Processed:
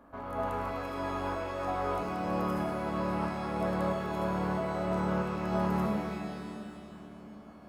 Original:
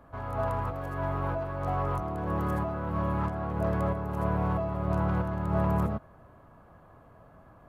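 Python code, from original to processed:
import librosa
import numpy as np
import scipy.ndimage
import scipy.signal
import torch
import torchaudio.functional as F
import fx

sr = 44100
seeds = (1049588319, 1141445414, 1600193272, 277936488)

y = fx.low_shelf_res(x, sr, hz=170.0, db=-7.0, q=3.0)
y = fx.echo_split(y, sr, split_hz=390.0, low_ms=705, high_ms=106, feedback_pct=52, wet_db=-12.5)
y = fx.rev_shimmer(y, sr, seeds[0], rt60_s=1.9, semitones=12, shimmer_db=-8, drr_db=3.0)
y = y * 10.0 ** (-2.5 / 20.0)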